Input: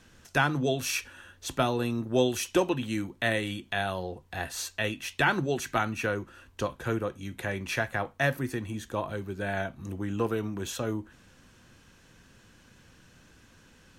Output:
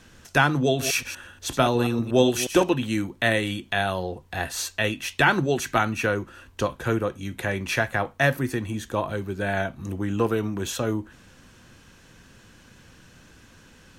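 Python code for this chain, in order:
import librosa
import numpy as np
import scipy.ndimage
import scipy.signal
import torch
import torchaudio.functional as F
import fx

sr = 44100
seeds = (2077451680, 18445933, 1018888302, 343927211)

y = fx.reverse_delay(x, sr, ms=120, wet_db=-10, at=(0.67, 2.74))
y = F.gain(torch.from_numpy(y), 5.5).numpy()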